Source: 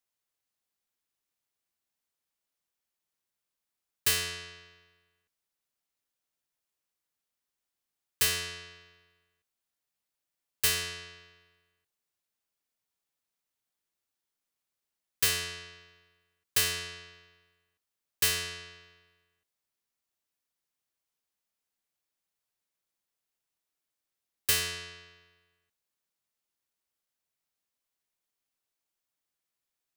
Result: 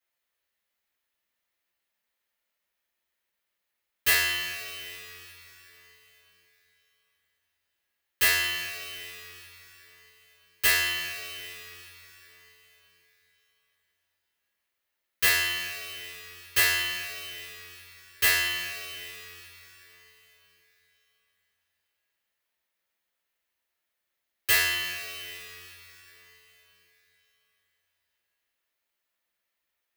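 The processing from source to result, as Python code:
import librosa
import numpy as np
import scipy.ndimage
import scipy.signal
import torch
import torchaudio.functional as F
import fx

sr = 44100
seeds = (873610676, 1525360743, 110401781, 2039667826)

y = fx.graphic_eq(x, sr, hz=(125, 2000, 8000), db=(-8, 6, -6))
y = fx.rev_double_slope(y, sr, seeds[0], early_s=0.3, late_s=4.0, knee_db=-18, drr_db=-7.5)
y = y * librosa.db_to_amplitude(-3.0)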